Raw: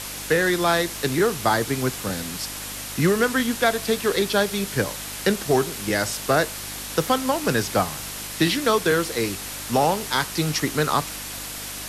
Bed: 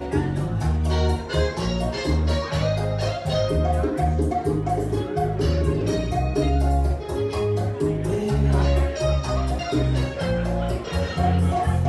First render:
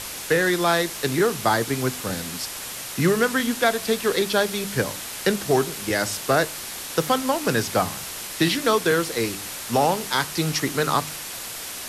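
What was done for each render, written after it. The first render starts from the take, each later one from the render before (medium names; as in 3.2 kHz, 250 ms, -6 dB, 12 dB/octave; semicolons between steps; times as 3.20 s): de-hum 50 Hz, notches 6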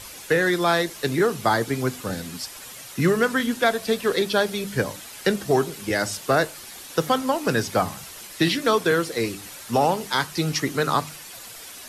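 noise reduction 9 dB, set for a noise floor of -34 dBFS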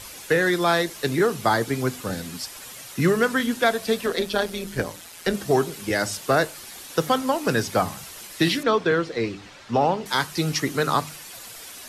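4.06–5.34 s: AM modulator 170 Hz, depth 45%; 8.63–10.06 s: distance through air 150 m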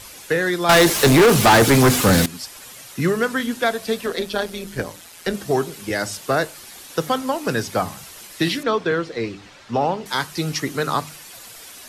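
0.69–2.26 s: waveshaping leveller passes 5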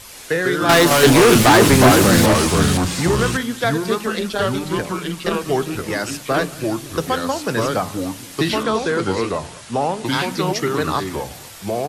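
delay 183 ms -22 dB; ever faster or slower copies 88 ms, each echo -3 st, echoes 2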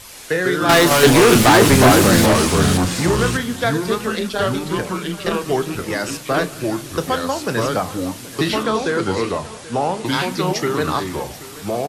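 doubling 33 ms -13.5 dB; delay 781 ms -18.5 dB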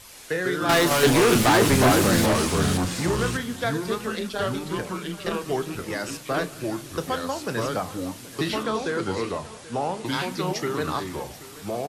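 trim -7 dB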